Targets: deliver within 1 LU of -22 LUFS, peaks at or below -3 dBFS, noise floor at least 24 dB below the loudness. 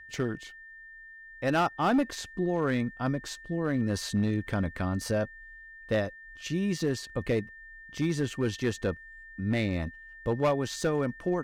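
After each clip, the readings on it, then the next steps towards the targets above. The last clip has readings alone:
clipped 1.1%; flat tops at -20.0 dBFS; steady tone 1800 Hz; tone level -46 dBFS; loudness -30.5 LUFS; peak -20.0 dBFS; loudness target -22.0 LUFS
-> clip repair -20 dBFS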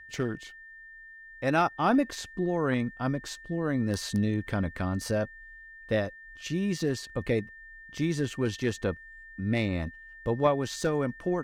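clipped 0.0%; steady tone 1800 Hz; tone level -46 dBFS
-> notch 1800 Hz, Q 30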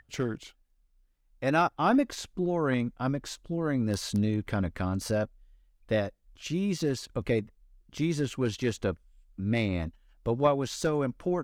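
steady tone none; loudness -30.0 LUFS; peak -11.5 dBFS; loudness target -22.0 LUFS
-> gain +8 dB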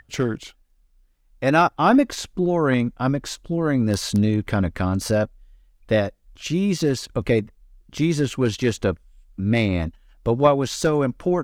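loudness -22.0 LUFS; peak -3.5 dBFS; noise floor -60 dBFS

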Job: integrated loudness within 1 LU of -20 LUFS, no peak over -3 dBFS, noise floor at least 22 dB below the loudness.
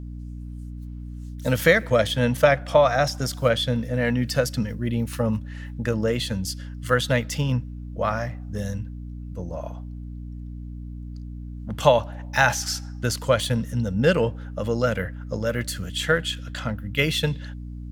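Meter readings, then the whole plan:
hum 60 Hz; harmonics up to 300 Hz; hum level -33 dBFS; loudness -24.0 LUFS; peak -2.5 dBFS; loudness target -20.0 LUFS
-> notches 60/120/180/240/300 Hz; gain +4 dB; limiter -3 dBFS

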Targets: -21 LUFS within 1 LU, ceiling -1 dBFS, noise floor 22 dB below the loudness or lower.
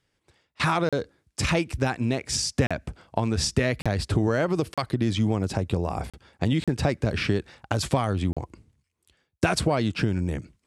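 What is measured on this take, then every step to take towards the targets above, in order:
dropouts 7; longest dropout 36 ms; loudness -26.0 LUFS; peak -7.0 dBFS; loudness target -21.0 LUFS
-> interpolate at 0.89/2.67/3.82/4.74/6.1/6.64/8.33, 36 ms; gain +5 dB

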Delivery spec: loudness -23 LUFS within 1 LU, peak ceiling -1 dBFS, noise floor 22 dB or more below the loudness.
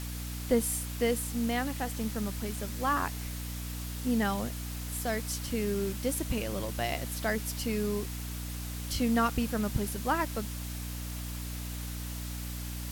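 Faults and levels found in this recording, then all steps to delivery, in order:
hum 60 Hz; harmonics up to 300 Hz; hum level -36 dBFS; noise floor -38 dBFS; noise floor target -55 dBFS; loudness -32.5 LUFS; peak -13.0 dBFS; loudness target -23.0 LUFS
-> de-hum 60 Hz, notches 5; denoiser 17 dB, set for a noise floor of -38 dBFS; gain +9.5 dB

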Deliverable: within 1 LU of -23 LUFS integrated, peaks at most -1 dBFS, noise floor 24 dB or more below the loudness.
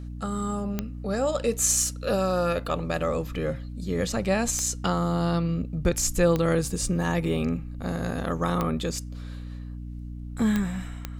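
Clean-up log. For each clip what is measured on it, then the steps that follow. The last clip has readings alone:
clicks 6; hum 60 Hz; harmonics up to 300 Hz; hum level -34 dBFS; loudness -26.5 LUFS; peak -8.5 dBFS; loudness target -23.0 LUFS
-> de-click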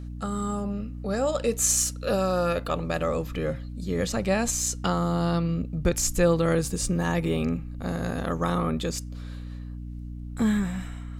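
clicks 0; hum 60 Hz; harmonics up to 300 Hz; hum level -34 dBFS
-> de-hum 60 Hz, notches 5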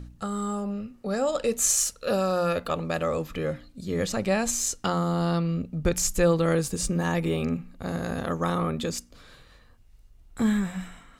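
hum none; loudness -27.0 LUFS; peak -9.5 dBFS; loudness target -23.0 LUFS
-> gain +4 dB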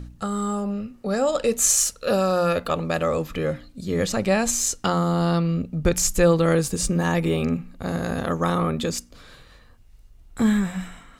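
loudness -23.0 LUFS; peak -5.5 dBFS; noise floor -51 dBFS

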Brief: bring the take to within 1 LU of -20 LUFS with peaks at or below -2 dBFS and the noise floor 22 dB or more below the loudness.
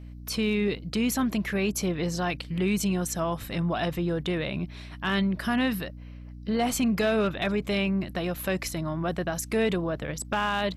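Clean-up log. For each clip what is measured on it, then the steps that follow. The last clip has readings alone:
clipped 0.2%; flat tops at -18.0 dBFS; hum 60 Hz; harmonics up to 300 Hz; hum level -40 dBFS; loudness -28.0 LUFS; peak -18.0 dBFS; loudness target -20.0 LUFS
-> clip repair -18 dBFS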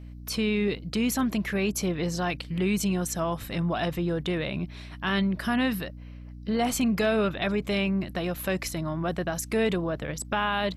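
clipped 0.0%; hum 60 Hz; harmonics up to 300 Hz; hum level -40 dBFS
-> notches 60/120/180/240/300 Hz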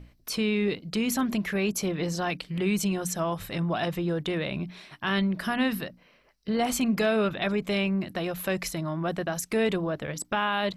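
hum none; loudness -28.5 LUFS; peak -15.0 dBFS; loudness target -20.0 LUFS
-> gain +8.5 dB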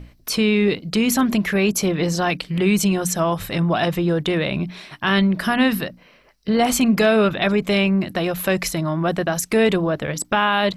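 loudness -20.0 LUFS; peak -6.5 dBFS; noise floor -53 dBFS

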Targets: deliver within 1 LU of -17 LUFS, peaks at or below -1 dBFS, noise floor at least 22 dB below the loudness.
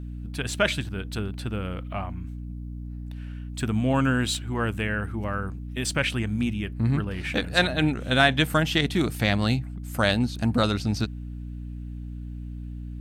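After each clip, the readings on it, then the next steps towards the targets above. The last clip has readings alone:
hum 60 Hz; harmonics up to 300 Hz; hum level -33 dBFS; loudness -25.5 LUFS; peak -5.0 dBFS; loudness target -17.0 LUFS
-> de-hum 60 Hz, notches 5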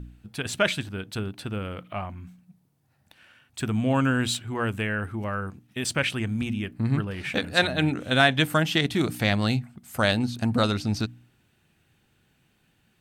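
hum none; loudness -26.0 LUFS; peak -5.5 dBFS; loudness target -17.0 LUFS
-> gain +9 dB; limiter -1 dBFS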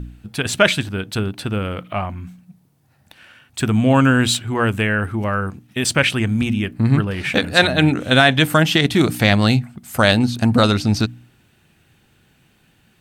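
loudness -17.5 LUFS; peak -1.0 dBFS; noise floor -58 dBFS

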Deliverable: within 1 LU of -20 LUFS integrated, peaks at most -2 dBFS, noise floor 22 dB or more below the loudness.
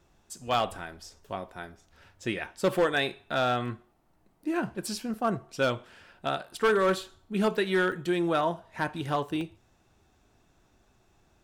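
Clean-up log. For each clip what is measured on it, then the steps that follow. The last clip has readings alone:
clipped 0.5%; flat tops at -18.0 dBFS; dropouts 5; longest dropout 1.3 ms; loudness -29.5 LUFS; peak -18.0 dBFS; loudness target -20.0 LUFS
-> clip repair -18 dBFS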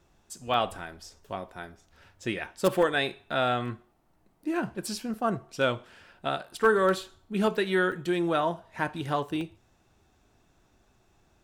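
clipped 0.0%; dropouts 5; longest dropout 1.3 ms
-> interpolate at 0.54/3.68/5.14/7.92/9.41, 1.3 ms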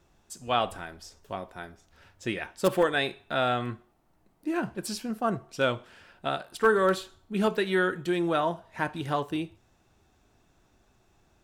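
dropouts 0; loudness -29.0 LUFS; peak -9.0 dBFS; loudness target -20.0 LUFS
-> gain +9 dB; limiter -2 dBFS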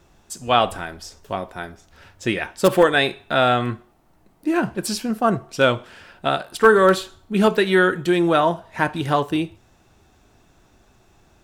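loudness -20.0 LUFS; peak -2.0 dBFS; noise floor -57 dBFS

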